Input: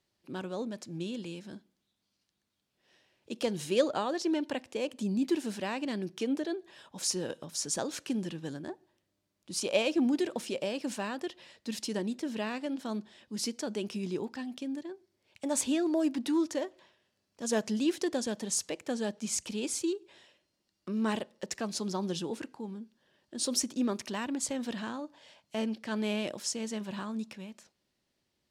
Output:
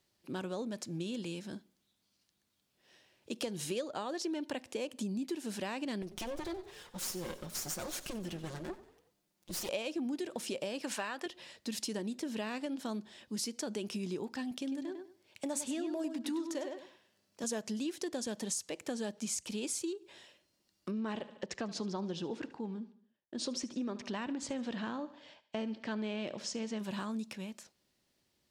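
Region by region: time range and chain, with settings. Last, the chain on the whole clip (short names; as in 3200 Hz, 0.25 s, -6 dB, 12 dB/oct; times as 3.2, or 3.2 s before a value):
6.02–9.69 minimum comb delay 5.6 ms + compressor 3:1, threshold -38 dBFS + frequency-shifting echo 92 ms, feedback 50%, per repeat +31 Hz, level -16 dB
10.83–11.26 HPF 350 Hz 6 dB/oct + bell 1600 Hz +8 dB 2.6 oct
14.51–17.44 HPF 110 Hz + darkening echo 0.1 s, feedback 21%, low-pass 4700 Hz, level -7 dB
20.91–26.79 expander -58 dBFS + air absorption 140 m + feedback echo 74 ms, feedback 50%, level -17.5 dB
whole clip: high shelf 6700 Hz +5.5 dB; compressor, threshold -36 dBFS; gain +1.5 dB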